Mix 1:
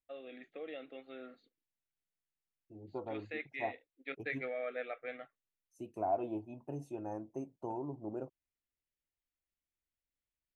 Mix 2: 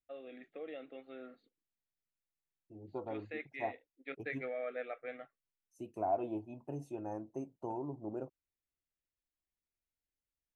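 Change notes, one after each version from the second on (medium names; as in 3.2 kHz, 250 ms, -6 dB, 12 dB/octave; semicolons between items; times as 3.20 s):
first voice: add treble shelf 2.8 kHz -8 dB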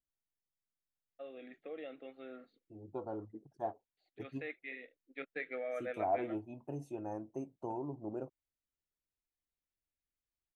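first voice: entry +1.10 s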